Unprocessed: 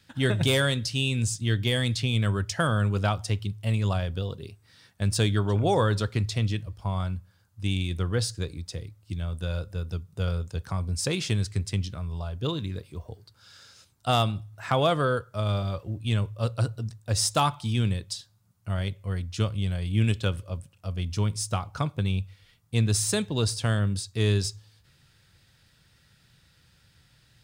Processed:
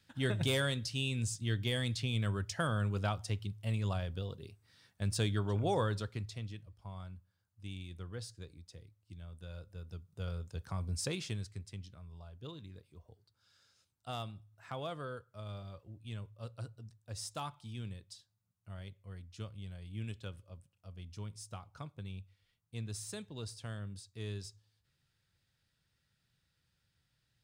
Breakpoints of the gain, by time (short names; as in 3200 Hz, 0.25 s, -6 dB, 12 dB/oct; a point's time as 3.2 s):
5.79 s -9 dB
6.5 s -17.5 dB
9.41 s -17.5 dB
10.96 s -7.5 dB
11.67 s -18 dB